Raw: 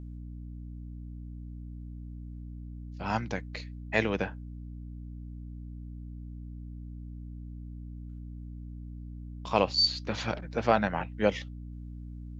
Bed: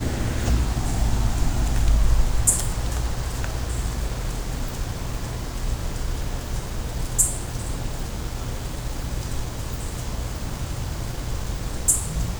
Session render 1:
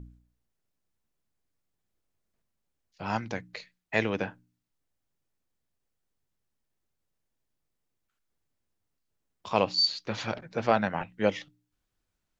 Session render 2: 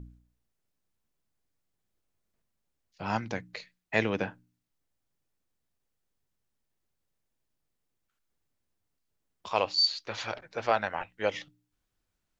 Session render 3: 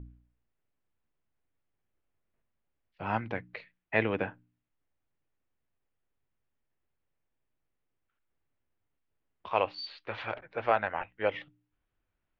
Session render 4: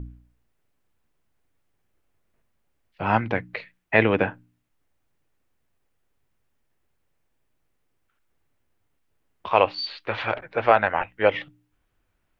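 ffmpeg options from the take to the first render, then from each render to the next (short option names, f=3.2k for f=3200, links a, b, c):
-af "bandreject=f=60:t=h:w=4,bandreject=f=120:t=h:w=4,bandreject=f=180:t=h:w=4,bandreject=f=240:t=h:w=4,bandreject=f=300:t=h:w=4"
-filter_complex "[0:a]asettb=1/sr,asplit=3[a][b][c];[a]atrim=end=9.474[d];[b]atrim=start=9.47:end=11.34,asetpts=PTS-STARTPTS,afade=t=in:d=0.004:c=qsin,afade=t=out:st=1.866:d=0.004:c=qsin,equalizer=f=180:t=o:w=1.6:g=-15[e];[c]atrim=start=11.336[f];[d][e]acrossfade=d=0.004:c1=hsin:c2=qsin[g];[g][f]acrossfade=d=0.004:c1=qsin:c2=hsin"
-af "lowpass=f=2.9k:w=0.5412,lowpass=f=2.9k:w=1.3066,equalizer=f=190:t=o:w=0.48:g=-4"
-af "volume=10dB,alimiter=limit=-3dB:level=0:latency=1"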